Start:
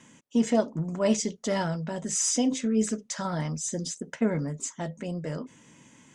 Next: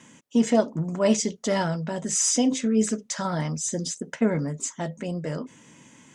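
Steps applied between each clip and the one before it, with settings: low shelf 66 Hz -6.5 dB; gain +3.5 dB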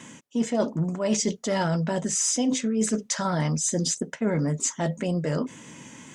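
reverse; compressor 6:1, threshold -29 dBFS, peak gain reduction 13.5 dB; reverse; wow and flutter 22 cents; gain +7 dB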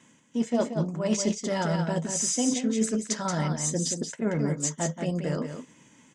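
echo 0.18 s -5.5 dB; upward expander 1.5:1, over -46 dBFS; gain -1 dB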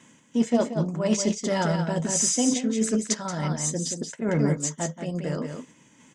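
random-step tremolo; gain +4.5 dB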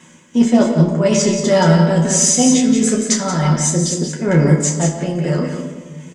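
on a send: early reflections 12 ms -5 dB, 31 ms -6.5 dB; on the sum: shoebox room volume 1300 m³, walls mixed, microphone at 1 m; gain +7 dB

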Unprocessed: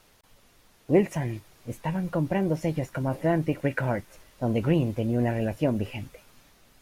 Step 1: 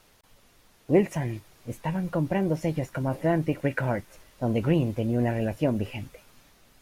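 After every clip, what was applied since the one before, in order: nothing audible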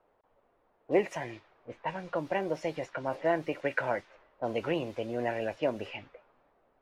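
low-pass opened by the level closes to 740 Hz, open at -22.5 dBFS; three-band isolator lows -18 dB, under 390 Hz, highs -15 dB, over 6400 Hz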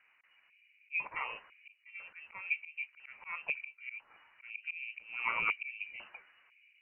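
auto swell 0.495 s; LFO low-pass square 1 Hz 560–1900 Hz; inverted band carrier 2900 Hz

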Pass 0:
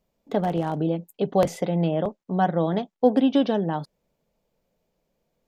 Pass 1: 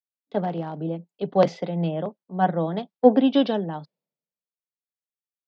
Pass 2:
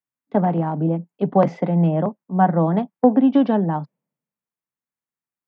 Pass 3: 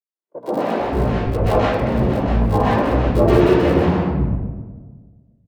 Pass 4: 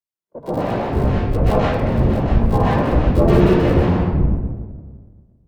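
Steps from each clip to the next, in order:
elliptic band-pass 150–4800 Hz; three-band expander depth 100%; gain -1 dB
ten-band EQ 125 Hz +11 dB, 250 Hz +10 dB, 1000 Hz +8 dB, 2000 Hz +6 dB, 4000 Hz -10 dB; compressor 4:1, threshold -12 dBFS, peak gain reduction 10.5 dB; dynamic EQ 720 Hz, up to +3 dB, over -31 dBFS, Q 1.1; gain -1 dB
cycle switcher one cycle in 3, inverted; three bands offset in time mids, highs, lows 0.11/0.45 s, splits 220/1100 Hz; reverb RT60 1.4 s, pre-delay 0.123 s, DRR -16.5 dB; gain -17.5 dB
octaver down 1 oct, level +2 dB; gain -1.5 dB

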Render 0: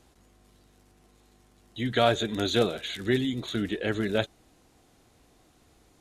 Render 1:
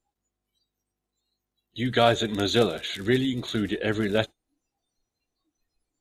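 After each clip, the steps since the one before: spectral noise reduction 27 dB; gain +2.5 dB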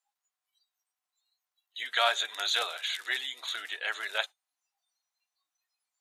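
HPF 850 Hz 24 dB/oct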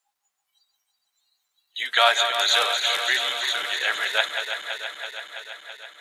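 regenerating reverse delay 0.165 s, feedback 84%, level -8 dB; gain +8 dB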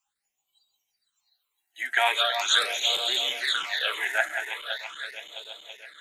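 phaser stages 8, 0.41 Hz, lowest notch 140–1800 Hz

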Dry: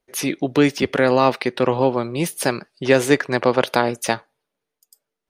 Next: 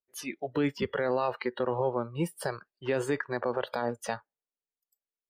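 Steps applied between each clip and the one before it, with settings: spectral noise reduction 18 dB; high shelf 3900 Hz -10 dB; limiter -12 dBFS, peak gain reduction 9 dB; gain -6.5 dB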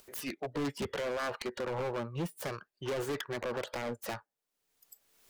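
self-modulated delay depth 0.28 ms; upward compressor, threshold -36 dBFS; overloaded stage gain 30.5 dB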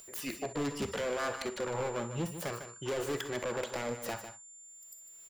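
echo 0.151 s -10 dB; whine 7200 Hz -51 dBFS; non-linear reverb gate 80 ms rising, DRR 10.5 dB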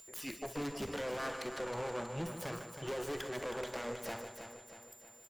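tube stage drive 31 dB, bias 0.5; feedback echo 0.319 s, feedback 50%, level -8.5 dB; gain -1 dB

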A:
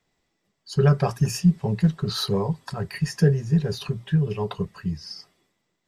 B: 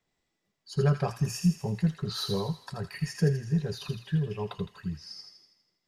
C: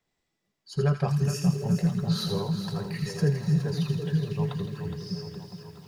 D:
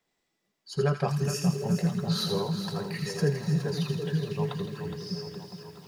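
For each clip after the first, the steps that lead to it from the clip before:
thin delay 81 ms, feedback 56%, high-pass 1800 Hz, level -5.5 dB; gain -6.5 dB
delay with a stepping band-pass 0.252 s, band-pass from 160 Hz, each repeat 0.7 oct, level -2 dB; lo-fi delay 0.415 s, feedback 55%, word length 9-bit, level -9 dB
EQ curve 100 Hz 0 dB, 210 Hz +7 dB, 400 Hz +9 dB; gain -7 dB

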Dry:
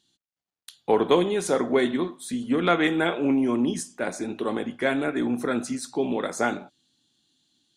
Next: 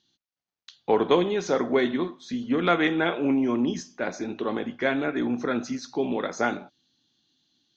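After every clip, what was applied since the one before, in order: Chebyshev low-pass 6400 Hz, order 6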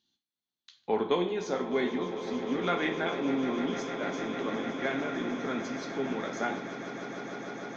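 swelling echo 0.151 s, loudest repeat 8, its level -14 dB; on a send at -4.5 dB: reverb RT60 0.50 s, pre-delay 3 ms; on the sum: gain -8 dB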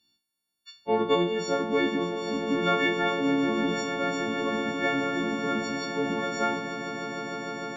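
frequency quantiser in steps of 4 st; tilt -1.5 dB/oct; gain +1.5 dB

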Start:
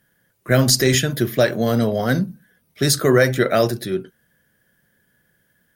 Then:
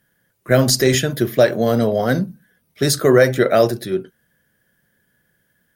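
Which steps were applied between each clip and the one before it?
dynamic EQ 550 Hz, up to +5 dB, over -28 dBFS, Q 0.78; gain -1 dB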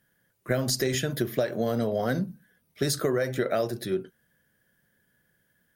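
compressor 12:1, threshold -17 dBFS, peak gain reduction 10.5 dB; gain -5 dB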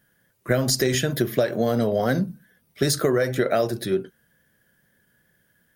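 wow and flutter 25 cents; gain +5 dB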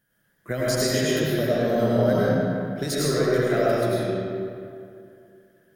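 reverb RT60 2.5 s, pre-delay 60 ms, DRR -7.5 dB; gain -8 dB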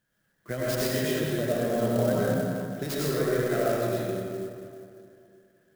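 clock jitter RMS 0.034 ms; gain -4.5 dB

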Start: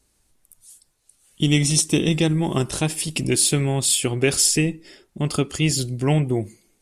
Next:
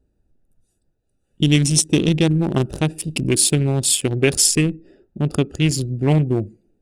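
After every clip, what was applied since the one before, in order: Wiener smoothing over 41 samples; gain +3.5 dB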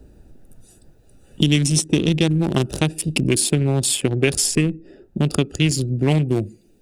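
three-band squash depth 70%; gain -1 dB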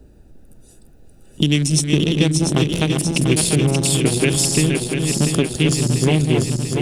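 regenerating reverse delay 0.346 s, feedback 80%, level -5 dB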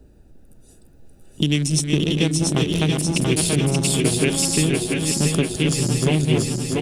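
echo 0.681 s -5 dB; gain -3 dB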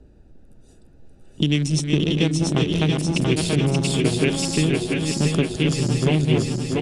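air absorption 72 m

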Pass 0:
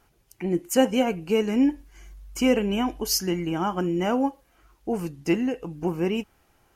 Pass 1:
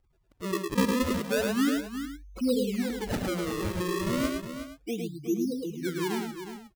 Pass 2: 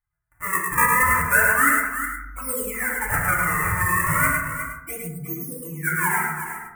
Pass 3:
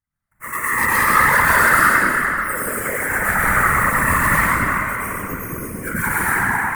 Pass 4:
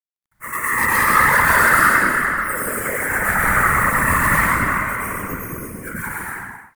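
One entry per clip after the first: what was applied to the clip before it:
spectral contrast raised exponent 2.9; decimation with a swept rate 34×, swing 160% 0.33 Hz; on a send: tapped delay 57/107/363/466 ms -19.5/-4/-9.5/-16 dB; on the sum: gain -5.5 dB
gate with hold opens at -55 dBFS; EQ curve 160 Hz 0 dB, 230 Hz -19 dB, 460 Hz -13 dB, 730 Hz 0 dB, 1300 Hz +12 dB, 2000 Hz +14 dB, 3800 Hz -27 dB, 8700 Hz +15 dB; FDN reverb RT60 0.83 s, low-frequency decay 1.55×, high-frequency decay 0.3×, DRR -3 dB; gain +1.5 dB
sine folder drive 6 dB, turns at -3.5 dBFS; digital reverb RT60 3.2 s, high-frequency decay 0.65×, pre-delay 85 ms, DRR -9 dB; whisperiser; gain -13 dB
ending faded out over 1.43 s; bit-crush 12-bit

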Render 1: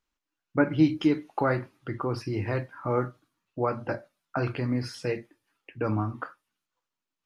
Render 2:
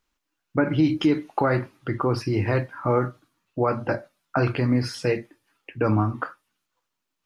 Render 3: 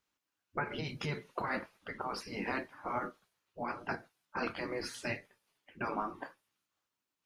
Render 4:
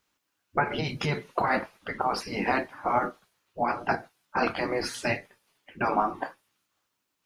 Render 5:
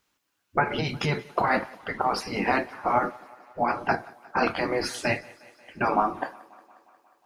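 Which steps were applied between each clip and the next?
limiter -17.5 dBFS, peak gain reduction 7.5 dB; gain +6.5 dB
spectral gate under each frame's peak -10 dB weak; gain -5.5 dB
dynamic EQ 750 Hz, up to +7 dB, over -54 dBFS, Q 3; gain +8.5 dB
thinning echo 0.179 s, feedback 69%, high-pass 170 Hz, level -23 dB; gain +2 dB

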